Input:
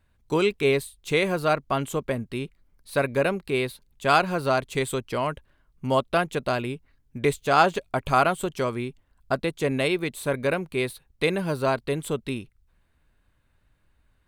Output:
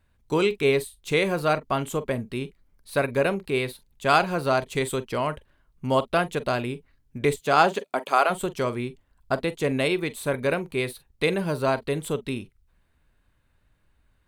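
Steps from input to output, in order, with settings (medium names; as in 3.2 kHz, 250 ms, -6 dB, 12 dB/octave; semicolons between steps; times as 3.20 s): 7.39–8.29 s: high-pass 97 Hz -> 410 Hz 24 dB/octave; reverberation, pre-delay 38 ms, DRR 15.5 dB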